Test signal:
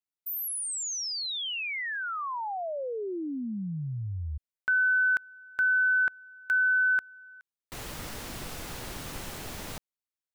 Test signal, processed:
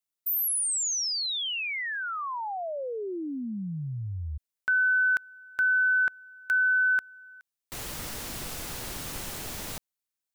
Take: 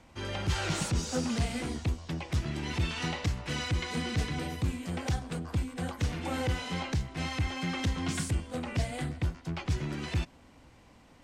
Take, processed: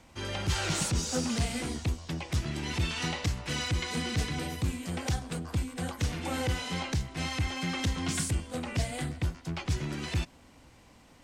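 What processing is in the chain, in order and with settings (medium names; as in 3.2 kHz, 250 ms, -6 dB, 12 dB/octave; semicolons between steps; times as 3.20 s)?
treble shelf 4.3 kHz +6.5 dB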